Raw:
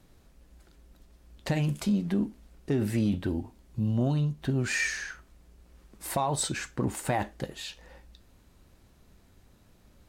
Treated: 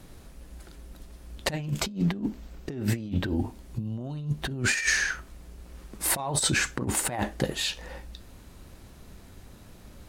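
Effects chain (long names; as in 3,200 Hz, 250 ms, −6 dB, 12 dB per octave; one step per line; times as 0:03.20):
parametric band 10,000 Hz +4.5 dB 0.28 octaves, from 0:01.53 −13 dB, from 0:03.36 +2.5 dB
compressor whose output falls as the input rises −32 dBFS, ratio −0.5
level +5.5 dB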